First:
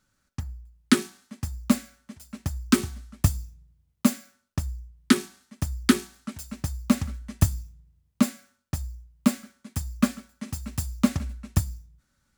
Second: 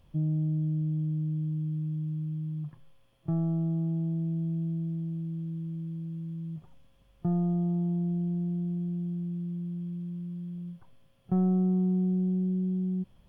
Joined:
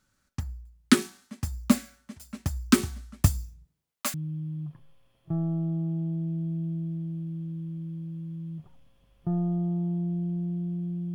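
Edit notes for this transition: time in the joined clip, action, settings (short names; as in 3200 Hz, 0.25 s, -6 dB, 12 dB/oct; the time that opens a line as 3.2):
first
3.64–4.14 HPF 160 Hz -> 1100 Hz
4.14 switch to second from 2.12 s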